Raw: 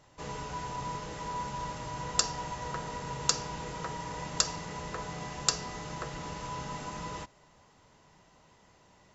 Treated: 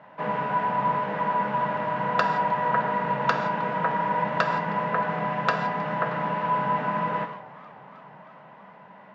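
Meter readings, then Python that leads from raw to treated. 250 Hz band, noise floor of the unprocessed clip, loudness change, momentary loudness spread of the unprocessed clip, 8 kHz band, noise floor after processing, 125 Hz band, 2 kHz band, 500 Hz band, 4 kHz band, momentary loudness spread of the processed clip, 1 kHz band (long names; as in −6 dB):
+10.5 dB, −62 dBFS, +9.0 dB, 10 LU, can't be measured, −49 dBFS, +6.5 dB, +13.5 dB, +13.0 dB, −6.0 dB, 4 LU, +14.0 dB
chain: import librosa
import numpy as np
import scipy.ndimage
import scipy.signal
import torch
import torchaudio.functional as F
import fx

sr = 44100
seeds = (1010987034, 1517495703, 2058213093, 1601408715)

y = fx.cabinet(x, sr, low_hz=160.0, low_slope=24, high_hz=2600.0, hz=(190.0, 350.0, 630.0, 930.0, 1600.0), db=(8, -8, 8, 6, 7))
y = fx.rev_gated(y, sr, seeds[0], gate_ms=190, shape='flat', drr_db=7.0)
y = fx.echo_warbled(y, sr, ms=308, feedback_pct=74, rate_hz=2.8, cents=194, wet_db=-22.5)
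y = y * librosa.db_to_amplitude(8.5)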